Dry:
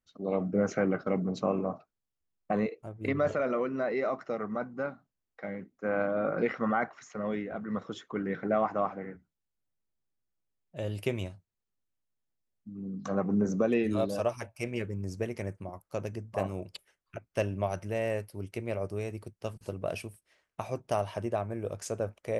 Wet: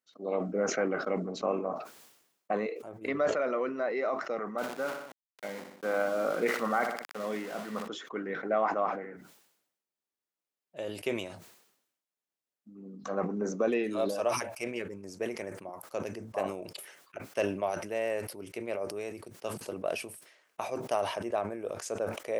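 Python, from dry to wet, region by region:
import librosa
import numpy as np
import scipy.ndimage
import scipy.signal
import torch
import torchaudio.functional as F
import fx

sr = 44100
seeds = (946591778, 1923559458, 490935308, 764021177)

y = fx.chain(x, sr, fx.low_shelf(hz=160.0, db=4.5),
    fx.sample_gate(floor_db=-40.5),
    fx.echo_feedback(ms=61, feedback_pct=31, wet_db=-13), at=(4.58, 7.88))
y = scipy.signal.sosfilt(scipy.signal.butter(2, 330.0, 'highpass', fs=sr, output='sos'), y)
y = fx.sustainer(y, sr, db_per_s=69.0)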